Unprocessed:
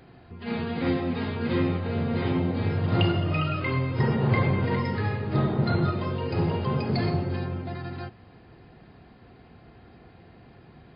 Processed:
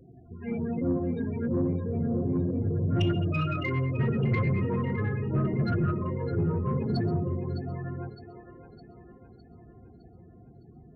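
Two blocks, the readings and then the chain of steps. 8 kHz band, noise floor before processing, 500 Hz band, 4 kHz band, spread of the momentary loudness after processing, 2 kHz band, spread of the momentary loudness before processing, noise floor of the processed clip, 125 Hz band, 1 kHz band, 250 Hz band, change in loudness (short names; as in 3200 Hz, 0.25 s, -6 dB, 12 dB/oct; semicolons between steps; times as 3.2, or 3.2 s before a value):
n/a, -52 dBFS, -2.5 dB, -8.5 dB, 10 LU, -5.5 dB, 9 LU, -53 dBFS, -1.5 dB, -6.5 dB, -1.5 dB, -2.0 dB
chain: loudest bins only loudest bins 16; split-band echo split 310 Hz, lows 81 ms, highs 0.61 s, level -11.5 dB; soft clip -19 dBFS, distortion -17 dB; bell 850 Hz -10 dB 0.25 oct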